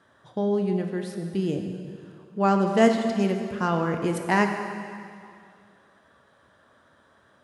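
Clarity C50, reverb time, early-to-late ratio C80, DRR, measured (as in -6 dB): 5.5 dB, 2.3 s, 6.5 dB, 4.0 dB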